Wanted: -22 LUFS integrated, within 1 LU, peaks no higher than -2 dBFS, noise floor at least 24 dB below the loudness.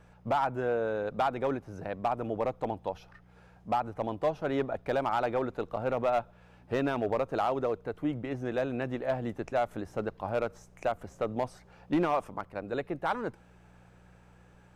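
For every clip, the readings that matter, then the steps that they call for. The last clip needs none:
clipped samples 0.6%; clipping level -21.0 dBFS; hum 60 Hz; highest harmonic 180 Hz; hum level -58 dBFS; loudness -32.5 LUFS; peak level -21.0 dBFS; loudness target -22.0 LUFS
-> clip repair -21 dBFS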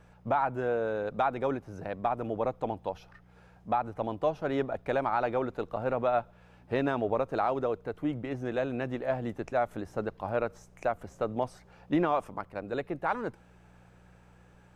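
clipped samples 0.0%; hum 60 Hz; highest harmonic 180 Hz; hum level -58 dBFS
-> de-hum 60 Hz, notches 3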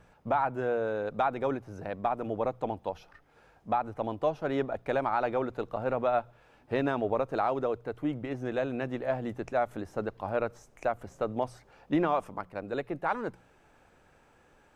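hum not found; loudness -32.0 LUFS; peak level -15.5 dBFS; loudness target -22.0 LUFS
-> trim +10 dB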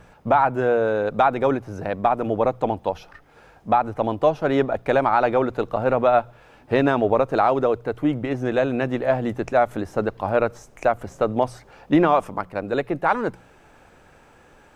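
loudness -22.0 LUFS; peak level -5.5 dBFS; noise floor -53 dBFS

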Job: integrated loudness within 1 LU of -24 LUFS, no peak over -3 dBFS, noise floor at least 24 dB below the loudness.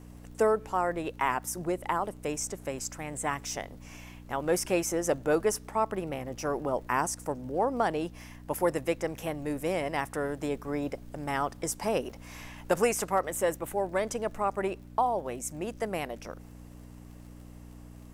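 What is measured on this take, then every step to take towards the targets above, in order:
tick rate 43 per s; hum 60 Hz; highest harmonic 300 Hz; hum level -45 dBFS; loudness -31.0 LUFS; peak level -13.5 dBFS; loudness target -24.0 LUFS
-> de-click; de-hum 60 Hz, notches 5; trim +7 dB

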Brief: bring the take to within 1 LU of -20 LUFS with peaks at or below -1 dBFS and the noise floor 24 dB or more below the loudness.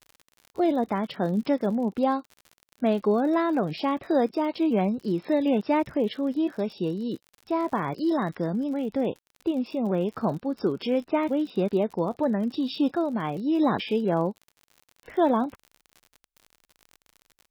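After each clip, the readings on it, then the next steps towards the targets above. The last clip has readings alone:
tick rate 56 per s; loudness -26.5 LUFS; peak level -12.0 dBFS; loudness target -20.0 LUFS
-> de-click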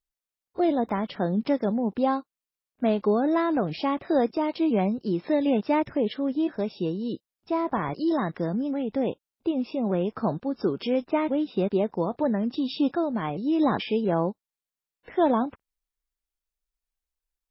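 tick rate 0.11 per s; loudness -26.5 LUFS; peak level -12.0 dBFS; loudness target -20.0 LUFS
-> trim +6.5 dB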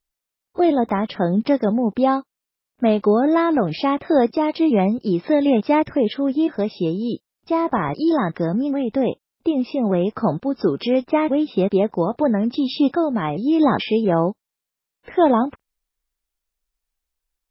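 loudness -20.0 LUFS; peak level -5.5 dBFS; noise floor -85 dBFS

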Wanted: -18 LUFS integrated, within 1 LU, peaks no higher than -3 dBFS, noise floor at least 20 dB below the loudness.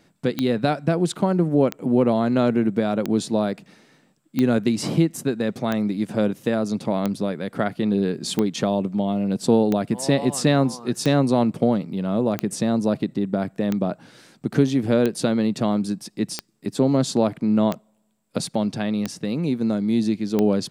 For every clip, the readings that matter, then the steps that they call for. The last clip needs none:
clicks found 16; loudness -22.5 LUFS; peak level -5.5 dBFS; loudness target -18.0 LUFS
-> de-click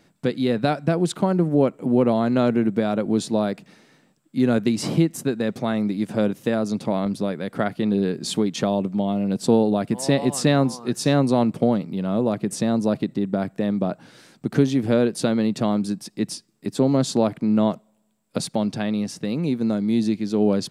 clicks found 0; loudness -22.5 LUFS; peak level -5.5 dBFS; loudness target -18.0 LUFS
-> trim +4.5 dB; peak limiter -3 dBFS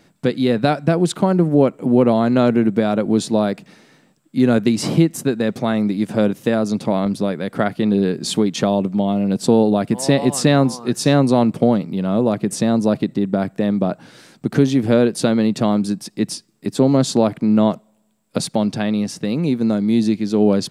loudness -18.0 LUFS; peak level -3.0 dBFS; noise floor -58 dBFS

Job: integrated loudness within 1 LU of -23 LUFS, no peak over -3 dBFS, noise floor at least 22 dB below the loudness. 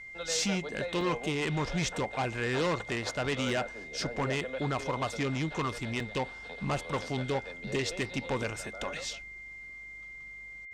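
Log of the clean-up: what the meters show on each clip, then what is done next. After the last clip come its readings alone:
dropouts 4; longest dropout 2.1 ms; steady tone 2.1 kHz; tone level -43 dBFS; loudness -32.5 LUFS; peak level -21.0 dBFS; loudness target -23.0 LUFS
-> interpolate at 1.01/3.49/5.13/6.00 s, 2.1 ms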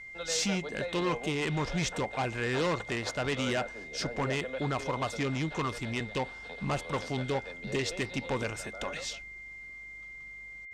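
dropouts 0; steady tone 2.1 kHz; tone level -43 dBFS
-> band-stop 2.1 kHz, Q 30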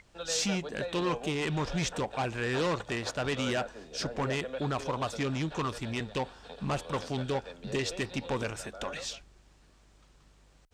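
steady tone not found; loudness -33.0 LUFS; peak level -21.5 dBFS; loudness target -23.0 LUFS
-> trim +10 dB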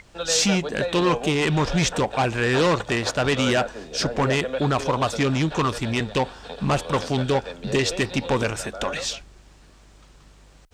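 loudness -23.0 LUFS; peak level -11.5 dBFS; noise floor -51 dBFS

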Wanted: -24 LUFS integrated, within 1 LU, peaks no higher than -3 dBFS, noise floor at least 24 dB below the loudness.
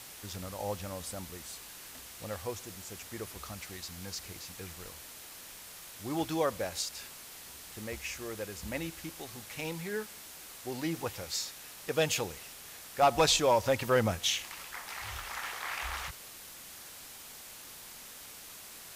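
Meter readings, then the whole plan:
noise floor -49 dBFS; noise floor target -59 dBFS; loudness -34.5 LUFS; peak level -16.0 dBFS; loudness target -24.0 LUFS
-> noise print and reduce 10 dB; trim +10.5 dB

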